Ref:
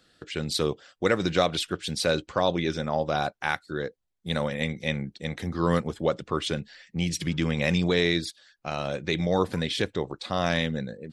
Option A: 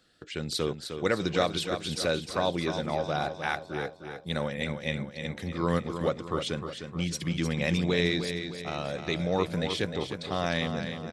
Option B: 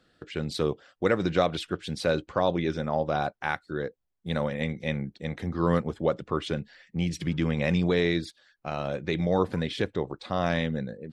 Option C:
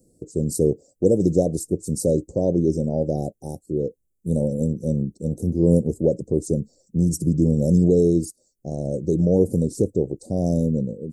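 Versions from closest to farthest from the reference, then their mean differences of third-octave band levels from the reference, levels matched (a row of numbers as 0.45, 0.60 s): B, A, C; 2.5, 5.0, 11.0 dB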